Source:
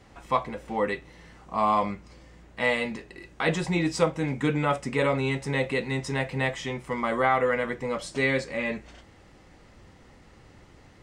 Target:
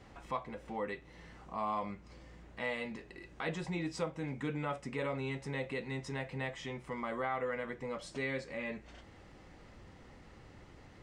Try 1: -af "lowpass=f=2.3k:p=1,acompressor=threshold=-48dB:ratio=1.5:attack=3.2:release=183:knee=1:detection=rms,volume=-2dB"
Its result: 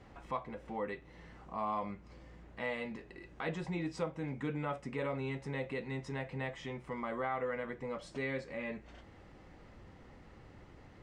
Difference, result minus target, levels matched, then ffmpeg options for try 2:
4000 Hz band -3.0 dB
-af "lowpass=f=5.6k:p=1,acompressor=threshold=-48dB:ratio=1.5:attack=3.2:release=183:knee=1:detection=rms,volume=-2dB"

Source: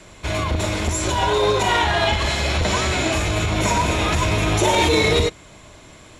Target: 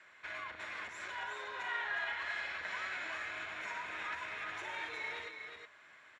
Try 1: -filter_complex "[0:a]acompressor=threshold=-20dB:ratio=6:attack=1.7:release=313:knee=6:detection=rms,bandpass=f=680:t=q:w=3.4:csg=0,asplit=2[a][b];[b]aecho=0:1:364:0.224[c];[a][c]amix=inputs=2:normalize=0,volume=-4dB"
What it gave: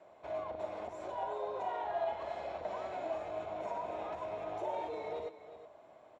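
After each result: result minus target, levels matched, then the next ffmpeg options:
2000 Hz band -16.0 dB; echo-to-direct -7 dB
-filter_complex "[0:a]acompressor=threshold=-20dB:ratio=6:attack=1.7:release=313:knee=6:detection=rms,bandpass=f=1.7k:t=q:w=3.4:csg=0,asplit=2[a][b];[b]aecho=0:1:364:0.224[c];[a][c]amix=inputs=2:normalize=0,volume=-4dB"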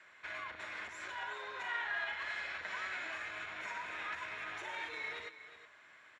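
echo-to-direct -7 dB
-filter_complex "[0:a]acompressor=threshold=-20dB:ratio=6:attack=1.7:release=313:knee=6:detection=rms,bandpass=f=1.7k:t=q:w=3.4:csg=0,asplit=2[a][b];[b]aecho=0:1:364:0.501[c];[a][c]amix=inputs=2:normalize=0,volume=-4dB"

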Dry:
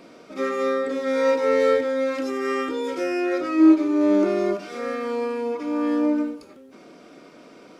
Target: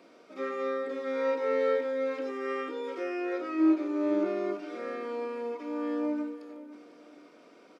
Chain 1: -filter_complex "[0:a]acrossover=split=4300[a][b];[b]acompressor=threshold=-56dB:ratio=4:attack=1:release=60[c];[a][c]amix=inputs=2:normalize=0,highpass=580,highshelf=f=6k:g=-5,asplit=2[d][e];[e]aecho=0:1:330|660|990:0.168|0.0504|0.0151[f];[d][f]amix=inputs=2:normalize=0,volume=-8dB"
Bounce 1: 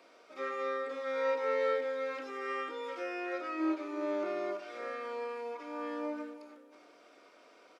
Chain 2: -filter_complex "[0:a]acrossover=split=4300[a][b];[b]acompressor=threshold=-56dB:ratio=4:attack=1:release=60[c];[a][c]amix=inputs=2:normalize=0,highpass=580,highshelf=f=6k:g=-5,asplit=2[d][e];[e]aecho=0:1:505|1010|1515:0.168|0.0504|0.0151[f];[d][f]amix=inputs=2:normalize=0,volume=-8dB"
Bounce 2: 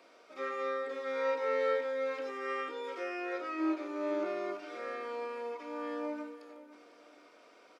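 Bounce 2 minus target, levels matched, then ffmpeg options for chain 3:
250 Hz band -4.5 dB
-filter_complex "[0:a]acrossover=split=4300[a][b];[b]acompressor=threshold=-56dB:ratio=4:attack=1:release=60[c];[a][c]amix=inputs=2:normalize=0,highpass=260,highshelf=f=6k:g=-5,asplit=2[d][e];[e]aecho=0:1:505|1010|1515:0.168|0.0504|0.0151[f];[d][f]amix=inputs=2:normalize=0,volume=-8dB"

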